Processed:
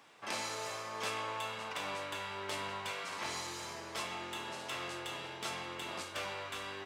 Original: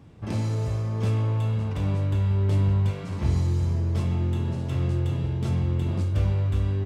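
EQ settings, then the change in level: high-pass 1 kHz 12 dB/octave; +5.0 dB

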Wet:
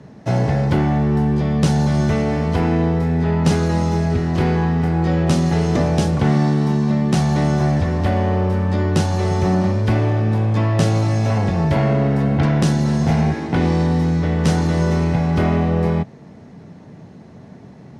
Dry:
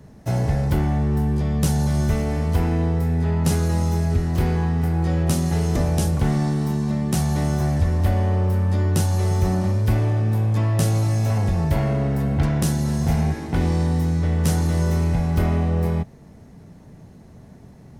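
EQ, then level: band-pass 130–4900 Hz; +6.5 dB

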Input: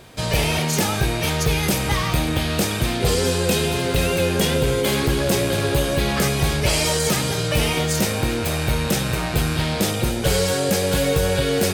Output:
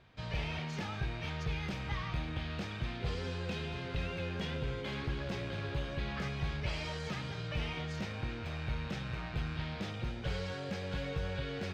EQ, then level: distance through air 210 m; amplifier tone stack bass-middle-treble 5-5-5; treble shelf 2.5 kHz -10.5 dB; 0.0 dB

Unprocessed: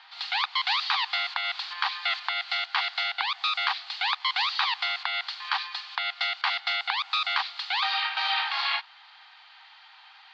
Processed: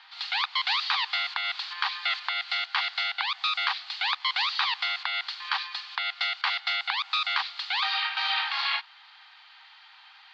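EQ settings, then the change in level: high-pass 840 Hz 12 dB/octave; 0.0 dB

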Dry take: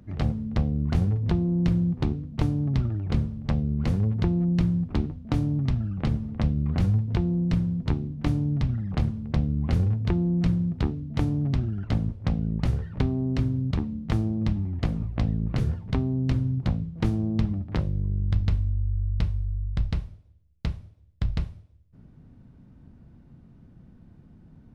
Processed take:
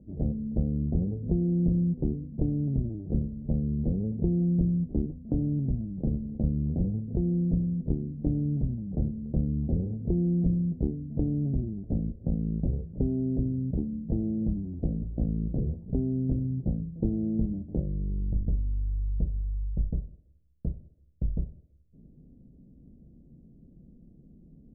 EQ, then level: inverse Chebyshev low-pass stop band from 1.1 kHz, stop band 40 dB; peaking EQ 99 Hz -12.5 dB 0.57 oct; 0.0 dB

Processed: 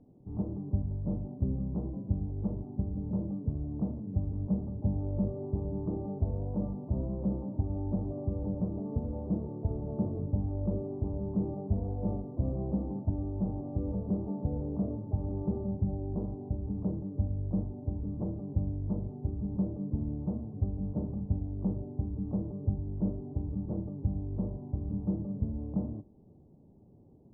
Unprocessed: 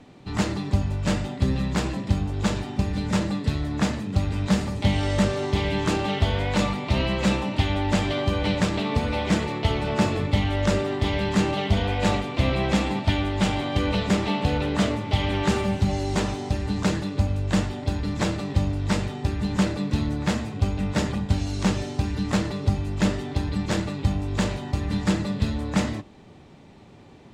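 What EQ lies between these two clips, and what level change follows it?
Gaussian low-pass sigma 14 samples; distance through air 200 m; -7.5 dB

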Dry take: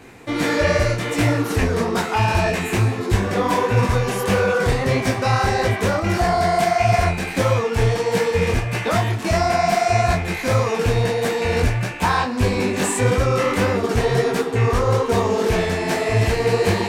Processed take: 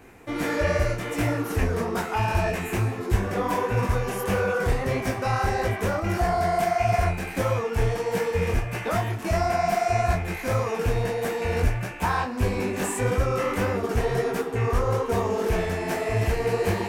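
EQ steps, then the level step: graphic EQ 125/250/500/1000/2000/4000/8000 Hz -7/-5/-4/-4/-4/-10/-6 dB; 0.0 dB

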